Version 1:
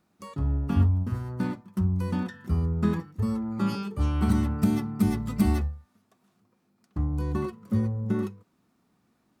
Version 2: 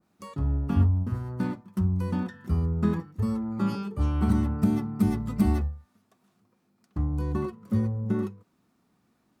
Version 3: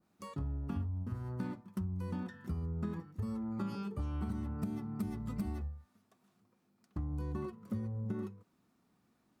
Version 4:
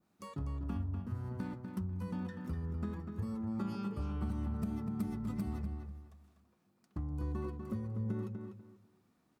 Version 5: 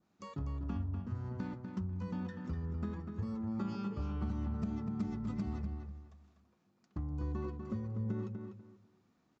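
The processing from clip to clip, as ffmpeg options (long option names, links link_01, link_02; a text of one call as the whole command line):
ffmpeg -i in.wav -af "adynamicequalizer=threshold=0.00398:dfrequency=1600:dqfactor=0.7:tfrequency=1600:tqfactor=0.7:attack=5:release=100:ratio=0.375:range=3.5:mode=cutabove:tftype=highshelf" out.wav
ffmpeg -i in.wav -af "acompressor=threshold=-30dB:ratio=6,volume=-4.5dB" out.wav
ffmpeg -i in.wav -filter_complex "[0:a]asplit=2[link_01][link_02];[link_02]adelay=246,lowpass=frequency=3500:poles=1,volume=-6dB,asplit=2[link_03][link_04];[link_04]adelay=246,lowpass=frequency=3500:poles=1,volume=0.25,asplit=2[link_05][link_06];[link_06]adelay=246,lowpass=frequency=3500:poles=1,volume=0.25[link_07];[link_01][link_03][link_05][link_07]amix=inputs=4:normalize=0,volume=-1dB" out.wav
ffmpeg -i in.wav -af "aresample=16000,aresample=44100" out.wav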